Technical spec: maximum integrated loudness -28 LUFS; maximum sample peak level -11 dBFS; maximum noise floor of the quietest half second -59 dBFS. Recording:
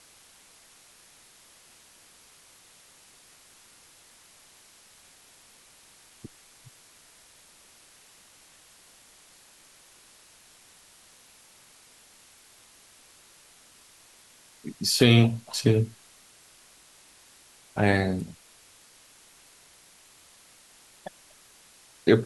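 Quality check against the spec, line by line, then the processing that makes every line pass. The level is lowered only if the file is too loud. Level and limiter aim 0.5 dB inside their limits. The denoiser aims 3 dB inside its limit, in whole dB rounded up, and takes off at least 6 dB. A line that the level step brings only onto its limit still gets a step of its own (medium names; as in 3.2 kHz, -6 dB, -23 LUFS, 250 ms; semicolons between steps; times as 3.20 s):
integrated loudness -24.0 LUFS: fail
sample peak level -5.5 dBFS: fail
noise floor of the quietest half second -56 dBFS: fail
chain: trim -4.5 dB; peak limiter -11.5 dBFS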